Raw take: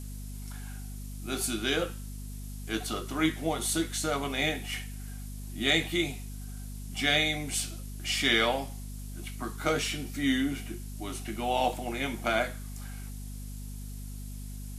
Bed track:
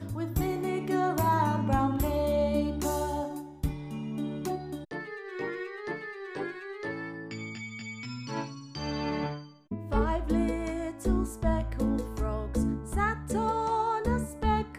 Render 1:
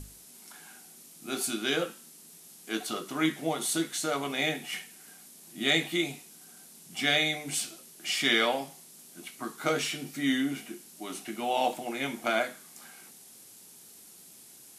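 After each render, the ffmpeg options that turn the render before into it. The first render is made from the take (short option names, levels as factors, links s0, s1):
-af "bandreject=f=50:t=h:w=6,bandreject=f=100:t=h:w=6,bandreject=f=150:t=h:w=6,bandreject=f=200:t=h:w=6,bandreject=f=250:t=h:w=6,bandreject=f=300:t=h:w=6"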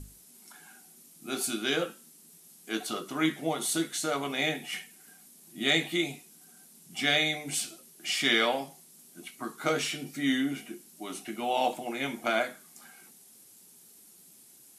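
-af "afftdn=nr=6:nf=-53"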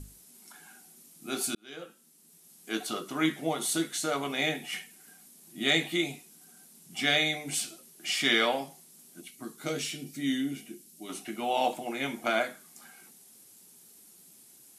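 -filter_complex "[0:a]asettb=1/sr,asplit=3[s0][s1][s2];[s0]atrim=end=9.214[s3];[s1]atrim=start=9.21:end=11.09,asetpts=PTS-STARTPTS,afade=t=in:d=0.004:c=qsin,afade=t=out:st=1.876:d=0.004:c=qsin,equalizer=f=1100:w=0.66:g=-11.5[s4];[s2]atrim=start=11.086[s5];[s3][s4]acrossfade=d=0.004:c1=hsin:c2=qsin[s6];[s6][s5]acrossfade=d=0.004:c1=qsin:c2=hsin,asplit=2[s7][s8];[s7]atrim=end=1.55,asetpts=PTS-STARTPTS,afade=t=out:st=1.546:d=0.004:c=hsin[s9];[s8]atrim=start=1.55,asetpts=PTS-STARTPTS,afade=t=in:d=1.16[s10];[s9][s10]concat=n=2:v=0:a=1"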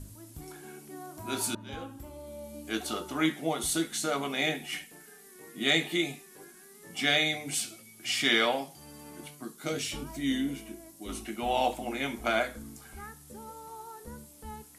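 -filter_complex "[1:a]volume=0.141[s0];[0:a][s0]amix=inputs=2:normalize=0"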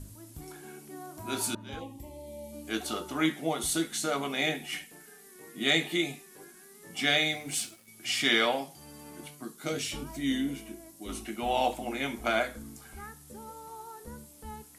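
-filter_complex "[0:a]asplit=3[s0][s1][s2];[s0]afade=t=out:st=1.79:d=0.02[s3];[s1]asuperstop=centerf=1400:order=12:qfactor=1.9,afade=t=in:st=1.79:d=0.02,afade=t=out:st=2.51:d=0.02[s4];[s2]afade=t=in:st=2.51:d=0.02[s5];[s3][s4][s5]amix=inputs=3:normalize=0,asettb=1/sr,asplit=3[s6][s7][s8];[s6]atrim=end=7.174[s9];[s7]atrim=start=7.17:end=7.88,asetpts=PTS-STARTPTS,afade=t=in:d=0.004:c=qsin,afade=t=out:st=0.706:d=0.004:c=qsin,aeval=exprs='sgn(val(0))*max(abs(val(0))-0.00211,0)':c=same[s10];[s8]atrim=start=7.876[s11];[s9][s10]acrossfade=d=0.004:c1=hsin:c2=qsin[s12];[s12][s11]acrossfade=d=0.004:c1=qsin:c2=hsin"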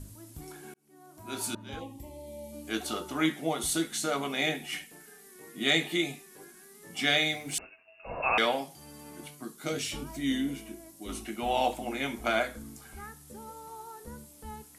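-filter_complex "[0:a]asettb=1/sr,asplit=3[s0][s1][s2];[s0]atrim=end=7.584[s3];[s1]atrim=start=7.58:end=8.38,asetpts=PTS-STARTPTS,afade=t=in:d=0.004:c=qsin,afade=t=out:st=0.796:d=0.004:c=qsin,lowpass=f=2500:t=q:w=0.5098,lowpass=f=2500:t=q:w=0.6013,lowpass=f=2500:t=q:w=0.9,lowpass=f=2500:t=q:w=2.563,afreqshift=-2900[s4];[s2]atrim=start=8.376[s5];[s3][s4]acrossfade=d=0.004:c1=hsin:c2=qsin[s6];[s6][s5]acrossfade=d=0.004:c1=qsin:c2=hsin,asplit=2[s7][s8];[s7]atrim=end=0.74,asetpts=PTS-STARTPTS,afade=t=out:st=0.736:d=0.004:c=hsin[s9];[s8]atrim=start=0.74,asetpts=PTS-STARTPTS,afade=t=in:d=0.96[s10];[s9][s10]concat=n=2:v=0:a=1"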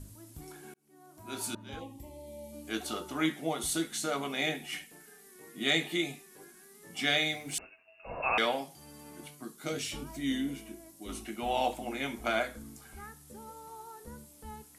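-af "volume=0.75"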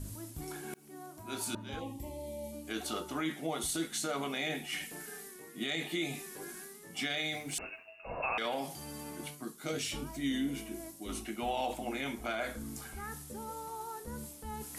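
-af "areverse,acompressor=mode=upward:threshold=0.0178:ratio=2.5,areverse,alimiter=level_in=1.12:limit=0.0631:level=0:latency=1:release=32,volume=0.891"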